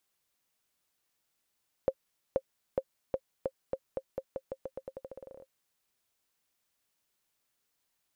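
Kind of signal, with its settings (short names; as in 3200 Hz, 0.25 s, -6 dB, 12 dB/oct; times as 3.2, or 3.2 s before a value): bouncing ball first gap 0.48 s, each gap 0.87, 532 Hz, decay 58 ms -15.5 dBFS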